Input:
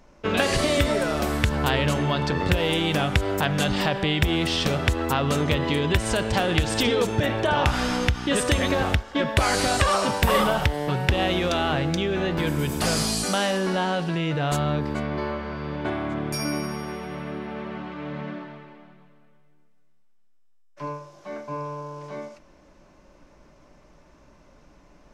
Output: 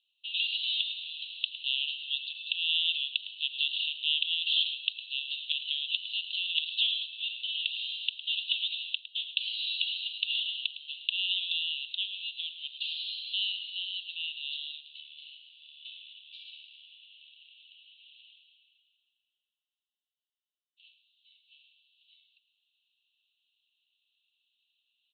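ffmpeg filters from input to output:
ffmpeg -i in.wav -filter_complex "[0:a]asplit=2[link_01][link_02];[link_02]acrusher=bits=3:mix=0:aa=0.5,volume=-5dB[link_03];[link_01][link_03]amix=inputs=2:normalize=0,asuperpass=centerf=3300:order=12:qfactor=2.5,aecho=1:1:108:0.224,volume=-2dB" out.wav

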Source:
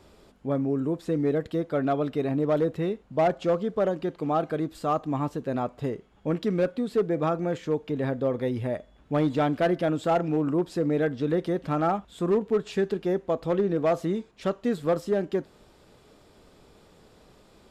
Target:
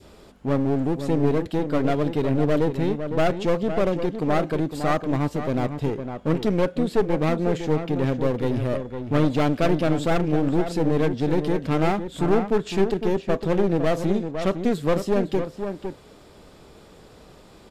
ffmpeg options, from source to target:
ffmpeg -i in.wav -filter_complex "[0:a]aeval=exprs='clip(val(0),-1,0.0224)':channel_layout=same,asplit=2[link_01][link_02];[link_02]adelay=507.3,volume=-8dB,highshelf=frequency=4000:gain=-11.4[link_03];[link_01][link_03]amix=inputs=2:normalize=0,adynamicequalizer=threshold=0.00708:dfrequency=1100:dqfactor=1.1:tfrequency=1100:tqfactor=1.1:attack=5:release=100:ratio=0.375:range=3:mode=cutabove:tftype=bell,volume=6.5dB" out.wav

